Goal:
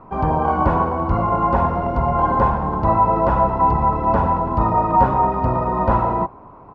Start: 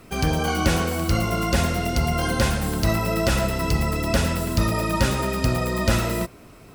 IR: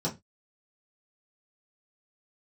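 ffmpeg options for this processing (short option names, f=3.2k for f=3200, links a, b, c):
-filter_complex "[0:a]lowpass=f=980:t=q:w=8.6,asplit=2[a][b];[b]asetrate=35002,aresample=44100,atempo=1.25992,volume=-9dB[c];[a][c]amix=inputs=2:normalize=0"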